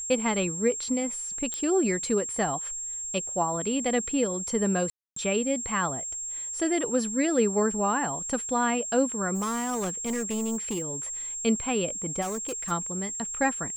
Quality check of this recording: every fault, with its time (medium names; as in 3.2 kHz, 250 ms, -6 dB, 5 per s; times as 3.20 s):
whine 7.5 kHz -32 dBFS
1.54 s: pop -17 dBFS
4.90–5.16 s: dropout 264 ms
9.34–10.96 s: clipped -26 dBFS
12.21–12.72 s: clipped -28.5 dBFS